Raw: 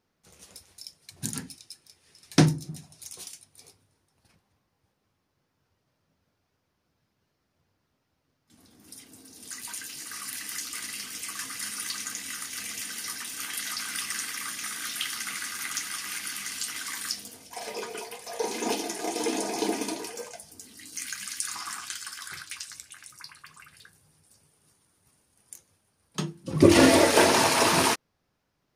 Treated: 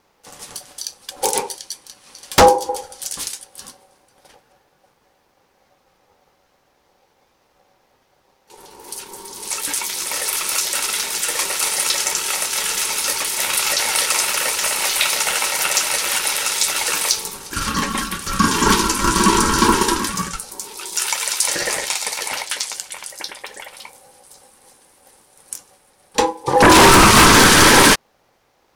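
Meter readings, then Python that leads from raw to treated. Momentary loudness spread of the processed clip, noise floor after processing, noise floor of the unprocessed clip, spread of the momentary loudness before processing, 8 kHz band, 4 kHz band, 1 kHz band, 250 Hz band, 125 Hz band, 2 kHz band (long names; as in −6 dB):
22 LU, −62 dBFS, −77 dBFS, 23 LU, +14.0 dB, +13.5 dB, +15.0 dB, +7.0 dB, +7.0 dB, +13.5 dB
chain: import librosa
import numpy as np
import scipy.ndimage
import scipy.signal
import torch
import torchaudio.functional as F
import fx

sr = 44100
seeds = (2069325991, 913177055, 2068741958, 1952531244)

y = fx.fold_sine(x, sr, drive_db=13, ceiling_db=-3.0)
y = y * np.sin(2.0 * np.pi * 660.0 * np.arange(len(y)) / sr)
y = y * librosa.db_to_amplitude(1.0)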